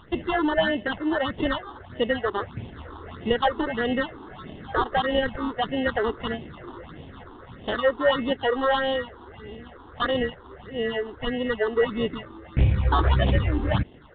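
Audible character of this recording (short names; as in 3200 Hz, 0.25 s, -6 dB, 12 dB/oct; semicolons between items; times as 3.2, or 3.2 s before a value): aliases and images of a low sample rate 2400 Hz, jitter 0%; phasing stages 6, 1.6 Hz, lowest notch 150–1400 Hz; µ-law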